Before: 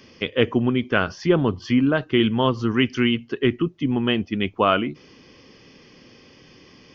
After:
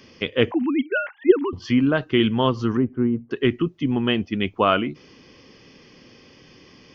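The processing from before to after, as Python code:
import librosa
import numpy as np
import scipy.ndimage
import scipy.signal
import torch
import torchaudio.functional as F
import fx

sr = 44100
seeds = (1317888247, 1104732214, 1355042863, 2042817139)

y = fx.sine_speech(x, sr, at=(0.51, 1.53))
y = fx.bessel_lowpass(y, sr, hz=730.0, order=4, at=(2.77, 3.31))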